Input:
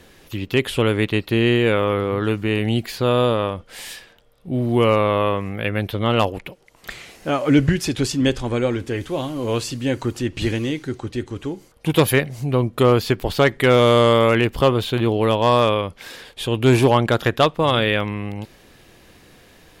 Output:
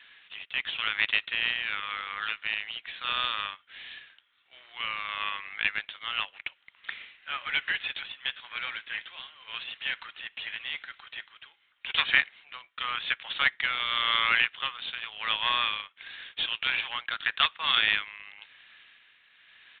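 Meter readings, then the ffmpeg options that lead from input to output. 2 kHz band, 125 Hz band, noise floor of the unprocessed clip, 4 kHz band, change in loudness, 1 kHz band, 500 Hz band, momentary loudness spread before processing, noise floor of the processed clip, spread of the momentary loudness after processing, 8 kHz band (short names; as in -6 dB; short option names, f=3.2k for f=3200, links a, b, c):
-1.5 dB, under -35 dB, -51 dBFS, -1.0 dB, -9.5 dB, -11.0 dB, -33.5 dB, 16 LU, -67 dBFS, 18 LU, under -40 dB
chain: -af "highpass=f=1.5k:w=0.5412,highpass=f=1.5k:w=1.3066,aresample=8000,acrusher=bits=3:mode=log:mix=0:aa=0.000001,aresample=44100,tremolo=f=0.91:d=0.57,volume=2dB"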